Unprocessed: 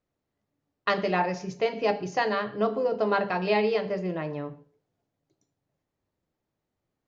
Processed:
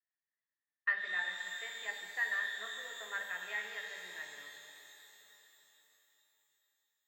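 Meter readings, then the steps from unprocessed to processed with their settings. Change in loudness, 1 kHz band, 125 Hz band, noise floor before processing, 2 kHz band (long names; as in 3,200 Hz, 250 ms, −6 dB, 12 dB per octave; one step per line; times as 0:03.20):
−10.5 dB, −20.5 dB, below −35 dB, −84 dBFS, −1.5 dB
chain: resonant band-pass 1,800 Hz, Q 13
reverb with rising layers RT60 3.8 s, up +12 semitones, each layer −8 dB, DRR 3.5 dB
level +2 dB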